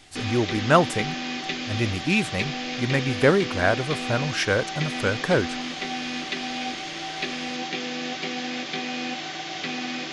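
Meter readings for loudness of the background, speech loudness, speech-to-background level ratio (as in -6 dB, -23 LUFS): -30.0 LUFS, -24.5 LUFS, 5.5 dB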